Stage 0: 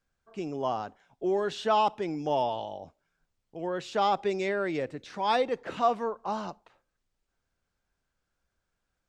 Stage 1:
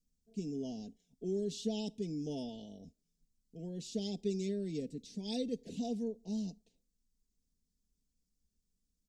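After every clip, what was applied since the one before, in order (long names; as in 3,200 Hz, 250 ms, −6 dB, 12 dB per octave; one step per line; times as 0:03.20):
Chebyshev band-stop filter 250–5,700 Hz, order 2
comb filter 4.4 ms, depth 67%
level −1 dB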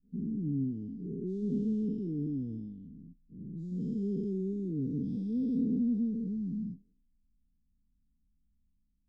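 every bin's largest magnitude spread in time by 480 ms
inverse Chebyshev low-pass filter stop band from 580 Hz, stop band 40 dB
noise reduction from a noise print of the clip's start 6 dB
level +6.5 dB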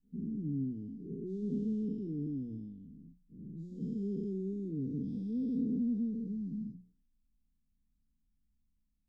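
mains-hum notches 60/120/180 Hz
level −3 dB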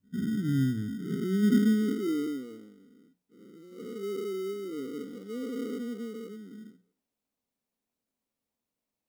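parametric band 160 Hz −8 dB 0.28 octaves
high-pass filter sweep 110 Hz → 490 Hz, 0:00.73–0:02.51
in parallel at −4.5 dB: decimation without filtering 26×
on the sum: level +3 dB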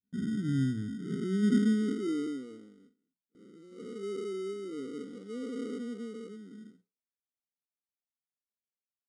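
noise gate with hold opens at −49 dBFS
downsampling to 22,050 Hz
level −2.5 dB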